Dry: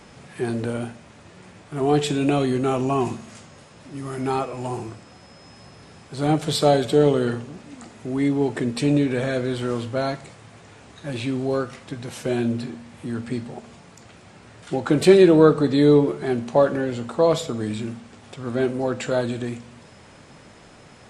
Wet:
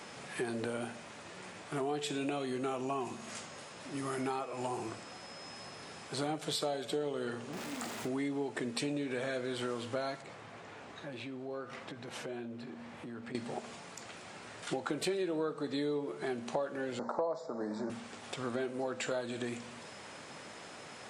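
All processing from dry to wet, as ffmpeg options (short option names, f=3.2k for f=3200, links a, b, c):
-filter_complex "[0:a]asettb=1/sr,asplit=3[a][b][c];[a]atrim=end=7.534[d];[b]atrim=start=7.53:end=8.08,asetpts=PTS-STARTPTS,afade=t=in:d=0.004:c=qsin,afade=t=out:st=0.546:d=0.004:c=qsin,aeval=exprs='val(0)+0.5*0.00891*sgn(val(0))':c=same,asplit=2[e][f];[f]adelay=46,volume=-12dB[g];[e][g]amix=inputs=2:normalize=0,atrim=end_sample=24255[h];[c]atrim=start=8.076[i];[d][h]acrossfade=d=0.004:c1=hsin:c2=qsin[j];[j][i]acrossfade=d=0.004:c1=qsin:c2=hsin,asettb=1/sr,asplit=3[k][l][m];[k]atrim=end=10.224[n];[l]atrim=start=10.22:end=13.35,asetpts=PTS-STARTPTS,afade=t=in:d=0.004:c=qsin,afade=t=out:st=3.126:d=0.004:c=qsin,aemphasis=mode=reproduction:type=75kf,acompressor=threshold=-38dB:ratio=4:attack=3.2:release=140:knee=1:detection=peak[o];[m]atrim=start=13.346[p];[n][o]acrossfade=d=0.004:c1=hsin:c2=qsin[q];[q][p]acrossfade=d=0.004:c1=qsin:c2=hsin,asettb=1/sr,asplit=3[r][s][t];[r]atrim=end=16.994[u];[s]atrim=start=16.99:end=17.9,asetpts=PTS-STARTPTS,afade=t=in:d=0.004:c=qsin,afade=t=out:st=0.906:d=0.004:c=qsin,asuperstop=centerf=2900:order=4:qfactor=0.83,highpass=f=150:w=0.5412,highpass=f=150:w=1.3066,equalizer=f=590:t=q:w=4:g=9,equalizer=f=900:t=q:w=4:g=9,equalizer=f=2.5k:t=q:w=4:g=-4,lowpass=f=5.4k:w=0.5412,lowpass=f=5.4k:w=1.3066[v];[t]atrim=start=17.896[w];[u][v]acrossfade=d=0.004:c1=hsin:c2=qsin[x];[x][w]acrossfade=d=0.004:c1=qsin:c2=hsin,highpass=f=460:p=1,acompressor=threshold=-35dB:ratio=6,volume=1.5dB"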